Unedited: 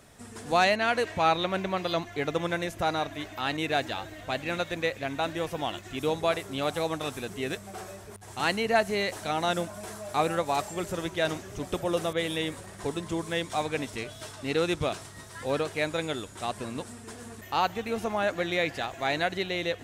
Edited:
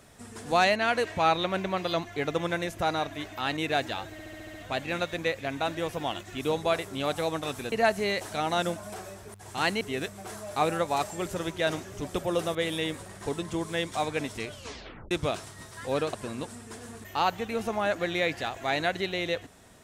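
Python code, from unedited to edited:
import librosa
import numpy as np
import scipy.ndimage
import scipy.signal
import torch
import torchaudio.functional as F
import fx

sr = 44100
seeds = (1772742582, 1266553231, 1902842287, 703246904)

y = fx.edit(x, sr, fx.stutter(start_s=4.12, slice_s=0.07, count=7),
    fx.swap(start_s=7.3, length_s=0.46, other_s=8.63, other_length_s=1.22),
    fx.tape_stop(start_s=14.09, length_s=0.6),
    fx.cut(start_s=15.71, length_s=0.79), tone=tone)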